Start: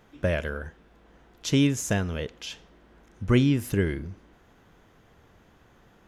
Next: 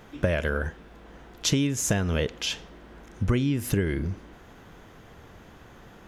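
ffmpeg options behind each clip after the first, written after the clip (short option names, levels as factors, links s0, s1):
-af "acompressor=threshold=0.0355:ratio=12,volume=2.66"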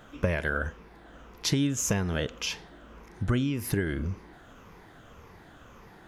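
-af "afftfilt=real='re*pow(10,7/40*sin(2*PI*(0.83*log(max(b,1)*sr/1024/100)/log(2)-(-1.8)*(pts-256)/sr)))':imag='im*pow(10,7/40*sin(2*PI*(0.83*log(max(b,1)*sr/1024/100)/log(2)-(-1.8)*(pts-256)/sr)))':win_size=1024:overlap=0.75,equalizer=f=1200:t=o:w=1:g=3.5,volume=0.668"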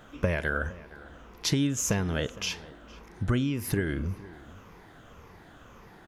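-filter_complex "[0:a]asplit=2[s0][s1];[s1]adelay=460.6,volume=0.112,highshelf=f=4000:g=-10.4[s2];[s0][s2]amix=inputs=2:normalize=0"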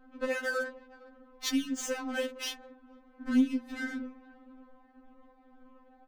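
-af "adynamicsmooth=sensitivity=8:basefreq=510,afftfilt=real='re*3.46*eq(mod(b,12),0)':imag='im*3.46*eq(mod(b,12),0)':win_size=2048:overlap=0.75"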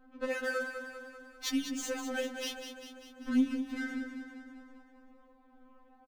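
-af "aecho=1:1:197|394|591|788|985|1182|1379:0.376|0.218|0.126|0.0733|0.0425|0.0247|0.0143,volume=0.75"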